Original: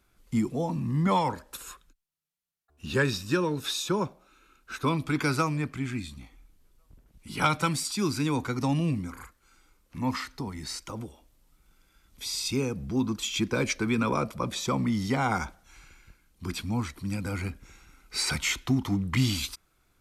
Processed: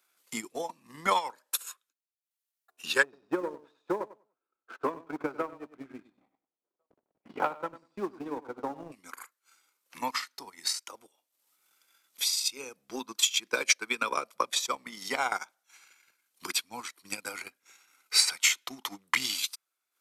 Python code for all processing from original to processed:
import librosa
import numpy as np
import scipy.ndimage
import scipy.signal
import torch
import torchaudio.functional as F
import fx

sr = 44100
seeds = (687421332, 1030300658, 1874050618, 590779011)

y = fx.chain(x, sr, fx.cheby1_lowpass(hz=630.0, order=2),
    fx.leveller(passes=1),
    fx.echo_feedback(ms=97, feedback_pct=27, wet_db=-8.0), at=(3.03, 8.92))
y = scipy.signal.sosfilt(scipy.signal.butter(2, 470.0, 'highpass', fs=sr, output='sos'), y)
y = fx.tilt_eq(y, sr, slope=2.0)
y = fx.transient(y, sr, attack_db=11, sustain_db=-12)
y = y * librosa.db_to_amplitude(-4.5)